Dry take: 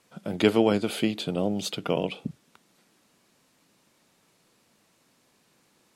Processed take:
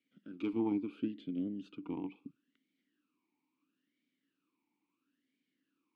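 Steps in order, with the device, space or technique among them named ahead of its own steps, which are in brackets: talk box (valve stage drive 12 dB, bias 0.8; talking filter i-u 0.74 Hz); 0.53–2.16 s: tilt EQ -2.5 dB/octave; trim -1 dB

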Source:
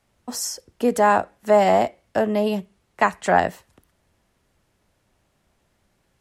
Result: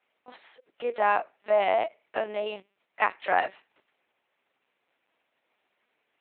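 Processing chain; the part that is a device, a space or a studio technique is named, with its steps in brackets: talking toy (LPC vocoder at 8 kHz pitch kept; high-pass 460 Hz 12 dB/octave; peaking EQ 2.4 kHz +7 dB 0.6 oct); trim -6 dB

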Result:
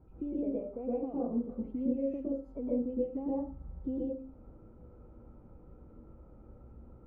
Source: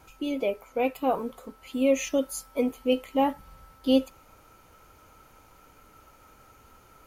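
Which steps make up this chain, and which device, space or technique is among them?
television next door (compression 5:1, threshold -33 dBFS, peak gain reduction 15.5 dB; low-pass 350 Hz 12 dB/octave; reverberation RT60 0.35 s, pre-delay 109 ms, DRR -6 dB)

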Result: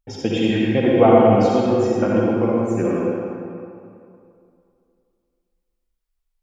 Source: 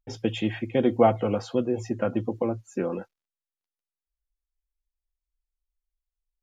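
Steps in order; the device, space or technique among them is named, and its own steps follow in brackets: stairwell (reverberation RT60 2.5 s, pre-delay 48 ms, DRR -4.5 dB); trim +3 dB

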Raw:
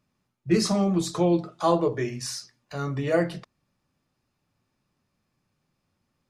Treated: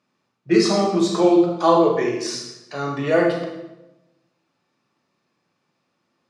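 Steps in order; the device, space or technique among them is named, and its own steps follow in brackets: supermarket ceiling speaker (band-pass 260–6100 Hz; reverberation RT60 1.0 s, pre-delay 28 ms, DRR 1 dB); trim +5 dB

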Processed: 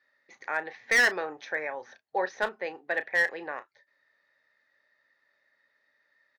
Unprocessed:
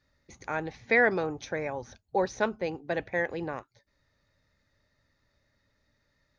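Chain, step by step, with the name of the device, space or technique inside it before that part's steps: megaphone (band-pass 510–3900 Hz; peaking EQ 1.8 kHz +10 dB 0.36 oct; hard clipper -18 dBFS, distortion -10 dB; doubling 33 ms -13.5 dB)

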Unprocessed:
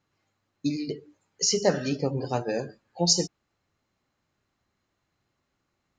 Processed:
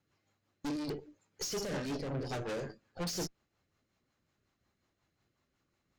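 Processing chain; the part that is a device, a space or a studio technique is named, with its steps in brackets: overdriven rotary cabinet (valve stage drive 38 dB, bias 0.8; rotary cabinet horn 5.5 Hz); trim +5 dB

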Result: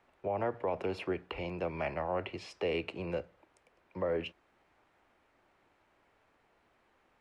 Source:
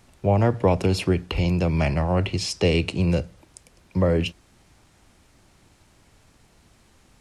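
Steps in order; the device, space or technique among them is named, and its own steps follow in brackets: DJ mixer with the lows and highs turned down (three-band isolator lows -17 dB, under 340 Hz, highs -21 dB, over 2.7 kHz; peak limiter -17 dBFS, peak gain reduction 7 dB); trim -6.5 dB

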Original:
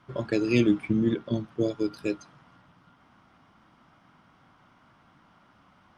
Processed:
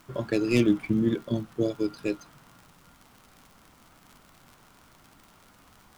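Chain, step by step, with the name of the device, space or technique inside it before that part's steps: record under a worn stylus (tracing distortion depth 0.07 ms; crackle 77 per s -40 dBFS; pink noise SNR 30 dB)

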